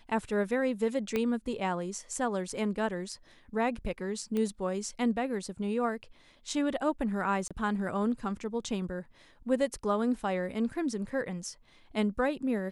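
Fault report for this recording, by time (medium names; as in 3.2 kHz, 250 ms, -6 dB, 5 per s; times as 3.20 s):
1.16 s: pop -17 dBFS
4.37 s: pop -21 dBFS
7.48–7.51 s: dropout 26 ms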